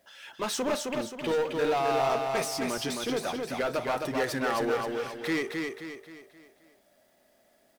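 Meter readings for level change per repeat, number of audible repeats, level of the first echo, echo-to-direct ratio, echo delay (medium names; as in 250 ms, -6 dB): -7.5 dB, 5, -4.0 dB, -3.0 dB, 264 ms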